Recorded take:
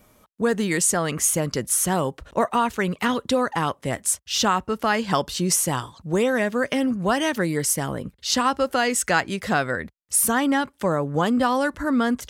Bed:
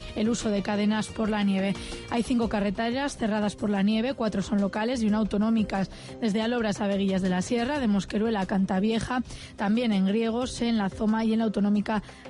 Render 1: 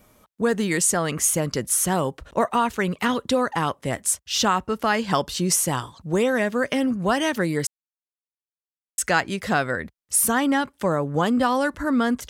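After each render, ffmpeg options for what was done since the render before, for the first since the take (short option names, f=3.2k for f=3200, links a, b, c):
-filter_complex "[0:a]asplit=3[a][b][c];[a]atrim=end=7.67,asetpts=PTS-STARTPTS,afade=t=out:st=7.666:d=0.004:c=hsin[d];[b]atrim=start=7.67:end=8.98,asetpts=PTS-STARTPTS,volume=0[e];[c]atrim=start=8.98,asetpts=PTS-STARTPTS,afade=t=in:d=0.004:c=hsin[f];[d][e][f]concat=n=3:v=0:a=1"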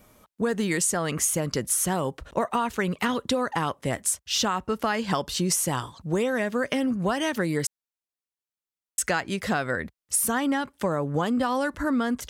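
-af "acompressor=threshold=-21dB:ratio=6"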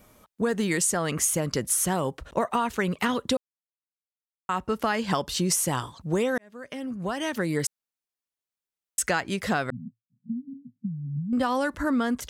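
-filter_complex "[0:a]asettb=1/sr,asplit=3[a][b][c];[a]atrim=end=9.704[d];[b]atrim=start=9.7:end=11.33,asetpts=PTS-STARTPTS,afade=t=in:d=0.004:c=qsin,afade=t=out:st=1.626:d=0.004:c=qsin,asuperpass=centerf=170:order=20:qfactor=1.2[e];[c]atrim=start=11.326[f];[d][e]acrossfade=d=0.004:c1=hsin:c2=qsin[g];[g][f]acrossfade=d=0.004:c1=qsin:c2=hsin,asplit=4[h][i][j][k];[h]atrim=end=3.37,asetpts=PTS-STARTPTS,afade=t=out:st=3.366:d=0.004:c=hsin[l];[i]atrim=start=3.37:end=4.49,asetpts=PTS-STARTPTS,volume=0[m];[j]atrim=start=4.49:end=6.38,asetpts=PTS-STARTPTS,afade=t=in:d=0.004:c=hsin,afade=t=out:st=1.886:d=0.004:c=hsin[n];[k]atrim=start=6.38,asetpts=PTS-STARTPTS,afade=t=in:d=1.23[o];[l][m][n][o]concat=n=4:v=0:a=1"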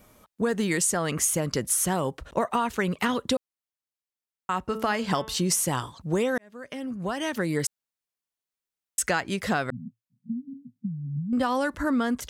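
-filter_complex "[0:a]asettb=1/sr,asplit=3[a][b][c];[a]atrim=end=4.664[d];[b]atrim=start=4.66:end=5.71,asetpts=PTS-STARTPTS,afade=t=in:d=0.004:c=qsin,afade=t=out:st=1.046:d=0.004:c=qsin,bandreject=f=219.8:t=h:w=4,bandreject=f=439.6:t=h:w=4,bandreject=f=659.4:t=h:w=4,bandreject=f=879.2:t=h:w=4,bandreject=f=1.099k:t=h:w=4,bandreject=f=1.3188k:t=h:w=4,bandreject=f=1.5386k:t=h:w=4,bandreject=f=1.7584k:t=h:w=4,bandreject=f=1.9782k:t=h:w=4,bandreject=f=2.198k:t=h:w=4,bandreject=f=2.4178k:t=h:w=4,bandreject=f=2.6376k:t=h:w=4,bandreject=f=2.8574k:t=h:w=4,bandreject=f=3.0772k:t=h:w=4,bandreject=f=3.297k:t=h:w=4,bandreject=f=3.5168k:t=h:w=4,bandreject=f=3.7366k:t=h:w=4[e];[c]atrim=start=5.706[f];[d][e]acrossfade=d=0.004:c1=hsin:c2=qsin[g];[g][f]acrossfade=d=0.004:c1=qsin:c2=hsin"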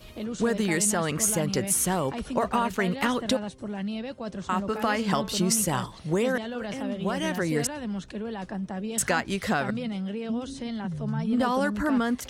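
-filter_complex "[1:a]volume=-8dB[a];[0:a][a]amix=inputs=2:normalize=0"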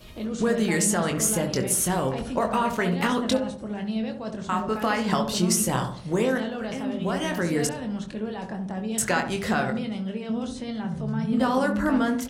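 -filter_complex "[0:a]asplit=2[a][b];[b]adelay=23,volume=-7dB[c];[a][c]amix=inputs=2:normalize=0,asplit=2[d][e];[e]adelay=68,lowpass=f=860:p=1,volume=-5dB,asplit=2[f][g];[g]adelay=68,lowpass=f=860:p=1,volume=0.51,asplit=2[h][i];[i]adelay=68,lowpass=f=860:p=1,volume=0.51,asplit=2[j][k];[k]adelay=68,lowpass=f=860:p=1,volume=0.51,asplit=2[l][m];[m]adelay=68,lowpass=f=860:p=1,volume=0.51,asplit=2[n][o];[o]adelay=68,lowpass=f=860:p=1,volume=0.51[p];[d][f][h][j][l][n][p]amix=inputs=7:normalize=0"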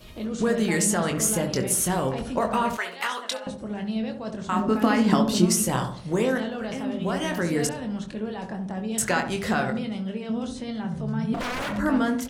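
-filter_complex "[0:a]asettb=1/sr,asplit=3[a][b][c];[a]atrim=end=2.774[d];[b]atrim=start=2.77:end=3.47,asetpts=PTS-STARTPTS,afade=t=in:d=0.004:c=qsin,afade=t=out:st=0.696:d=0.004:c=qsin,highpass=880[e];[c]atrim=start=3.466[f];[d][e]acrossfade=d=0.004:c1=hsin:c2=qsin[g];[g][f]acrossfade=d=0.004:c1=qsin:c2=hsin,asettb=1/sr,asplit=3[h][i][j];[h]atrim=end=4.564[k];[i]atrim=start=4.56:end=5.46,asetpts=PTS-STARTPTS,afade=t=in:d=0.004:c=qsin,afade=t=out:st=0.896:d=0.004:c=qsin,equalizer=f=270:t=o:w=0.68:g=12.5[l];[j]atrim=start=5.456[m];[k][l]acrossfade=d=0.004:c1=hsin:c2=qsin[n];[n][m]acrossfade=d=0.004:c1=qsin:c2=hsin,asettb=1/sr,asplit=3[o][p][q];[o]atrim=end=11.344[r];[p]atrim=start=11.34:end=11.78,asetpts=PTS-STARTPTS,afade=t=in:d=0.004:c=qsin,afade=t=out:st=0.436:d=0.004:c=qsin,aeval=exprs='0.0596*(abs(mod(val(0)/0.0596+3,4)-2)-1)':c=same[s];[q]atrim=start=11.776[t];[r][s]acrossfade=d=0.004:c1=hsin:c2=qsin[u];[u][t]acrossfade=d=0.004:c1=qsin:c2=hsin"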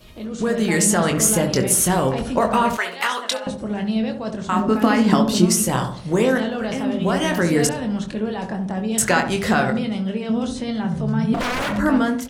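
-af "dynaudnorm=f=260:g=5:m=7dB"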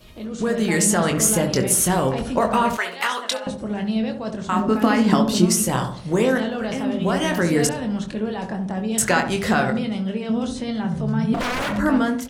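-af "volume=-1dB"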